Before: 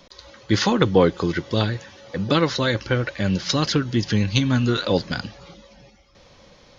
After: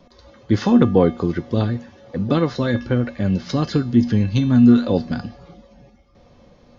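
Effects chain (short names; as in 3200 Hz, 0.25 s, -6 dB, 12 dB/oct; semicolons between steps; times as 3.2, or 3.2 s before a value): tilt shelf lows +7.5 dB, about 1200 Hz; resonator 240 Hz, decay 0.39 s, harmonics odd, mix 80%; gain +8.5 dB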